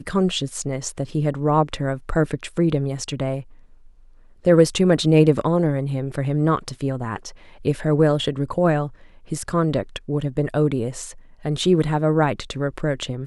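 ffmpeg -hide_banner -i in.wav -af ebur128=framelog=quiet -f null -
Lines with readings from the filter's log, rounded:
Integrated loudness:
  I:         -21.5 LUFS
  Threshold: -32.0 LUFS
Loudness range:
  LRA:         4.3 LU
  Threshold: -41.8 LUFS
  LRA low:   -23.9 LUFS
  LRA high:  -19.5 LUFS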